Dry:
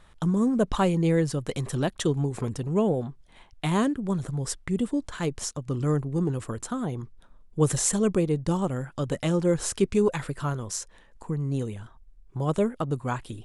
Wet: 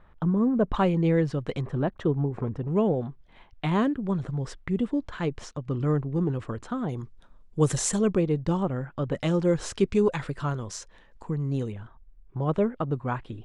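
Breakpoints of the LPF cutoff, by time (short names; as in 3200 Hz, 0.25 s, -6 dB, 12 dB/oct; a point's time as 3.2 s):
1700 Hz
from 0.74 s 3100 Hz
from 1.61 s 1500 Hz
from 2.68 s 3200 Hz
from 6.89 s 7700 Hz
from 8.01 s 3700 Hz
from 8.63 s 2300 Hz
from 9.15 s 5200 Hz
from 11.72 s 2500 Hz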